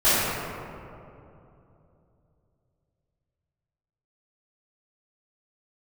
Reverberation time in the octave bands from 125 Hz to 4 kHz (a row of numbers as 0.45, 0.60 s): 4.0, 3.4, 3.1, 2.6, 1.9, 1.2 s